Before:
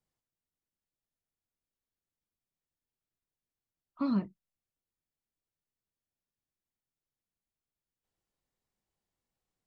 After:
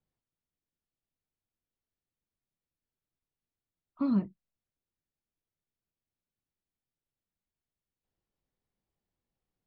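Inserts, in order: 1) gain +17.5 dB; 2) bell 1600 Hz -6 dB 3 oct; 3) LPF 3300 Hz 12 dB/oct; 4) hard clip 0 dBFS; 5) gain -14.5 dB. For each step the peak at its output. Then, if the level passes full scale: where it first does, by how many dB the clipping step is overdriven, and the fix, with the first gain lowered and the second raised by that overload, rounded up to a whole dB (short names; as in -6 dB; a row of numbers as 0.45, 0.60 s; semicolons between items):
-2.5, -3.5, -3.5, -3.5, -18.0 dBFS; no overload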